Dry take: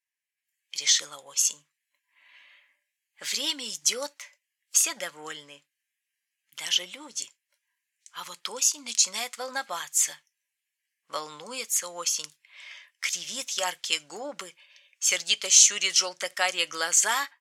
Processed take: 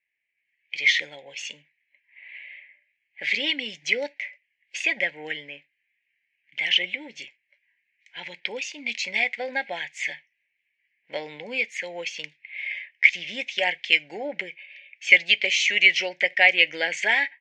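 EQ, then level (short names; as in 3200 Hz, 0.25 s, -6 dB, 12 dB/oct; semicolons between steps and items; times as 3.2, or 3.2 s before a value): Butterworth band-stop 1200 Hz, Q 1.1; synth low-pass 2200 Hz, resonance Q 4.3; air absorption 62 m; +5.5 dB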